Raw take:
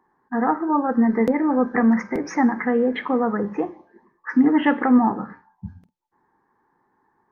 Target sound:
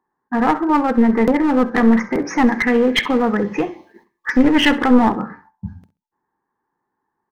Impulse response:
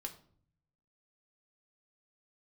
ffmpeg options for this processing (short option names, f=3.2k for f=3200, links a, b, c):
-filter_complex "[0:a]agate=range=-15dB:threshold=-53dB:ratio=16:detection=peak,asettb=1/sr,asplit=3[a][b][c];[a]atrim=end=2.474[d];[b]atrim=start=2.47:end=4.69,asetpts=PTS-STARTPTS,afade=t=in:d=0.004:c=qsin,afade=t=out:st=2.216:d=0.004:c=qsin,highshelf=f=1.9k:t=q:w=1.5:g=11[e];[c]atrim=start=4.686[f];[d][e]acrossfade=d=0.004:c1=hsin:c2=qsin[g];[g][f]acrossfade=d=0.004:c1=qsin:c2=hsin,aeval=exprs='clip(val(0),-1,0.1)':c=same,aecho=1:1:66|132:0.133|0.0293,volume=5.5dB"